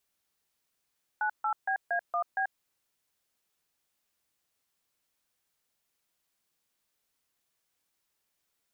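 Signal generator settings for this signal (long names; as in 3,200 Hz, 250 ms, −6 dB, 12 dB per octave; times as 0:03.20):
touch tones "98BA1B", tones 87 ms, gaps 145 ms, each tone −29 dBFS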